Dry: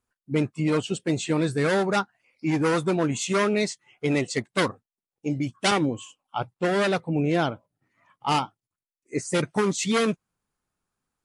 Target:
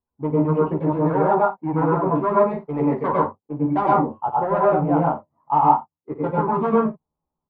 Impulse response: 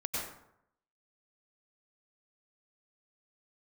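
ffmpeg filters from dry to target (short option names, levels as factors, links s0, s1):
-filter_complex "[0:a]atempo=1.5,adynamicsmooth=sensitivity=4.5:basefreq=720,lowpass=f=940:t=q:w=4.9,aecho=1:1:13|54:0.631|0.251[s0];[1:a]atrim=start_sample=2205,afade=t=out:st=0.2:d=0.01,atrim=end_sample=9261[s1];[s0][s1]afir=irnorm=-1:irlink=0,volume=0.668"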